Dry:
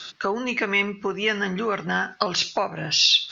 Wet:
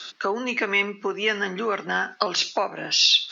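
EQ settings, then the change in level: HPF 220 Hz 24 dB/oct; 0.0 dB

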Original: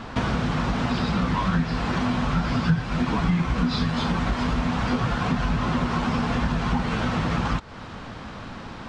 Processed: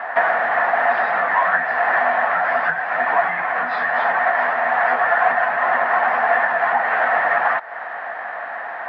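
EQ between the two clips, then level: resonant high-pass 700 Hz, resonance Q 7.8; synth low-pass 1800 Hz, resonance Q 9.3; 0.0 dB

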